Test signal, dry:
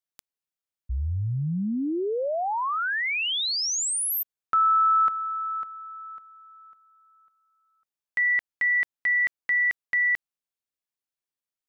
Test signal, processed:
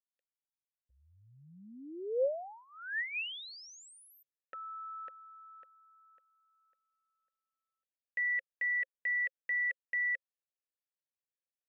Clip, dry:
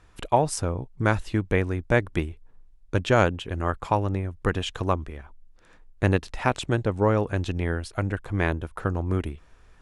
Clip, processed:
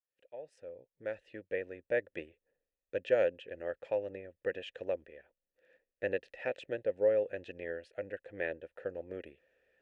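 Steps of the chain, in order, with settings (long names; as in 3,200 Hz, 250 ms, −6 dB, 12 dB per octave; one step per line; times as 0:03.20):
fade in at the beginning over 2.16 s
formant filter e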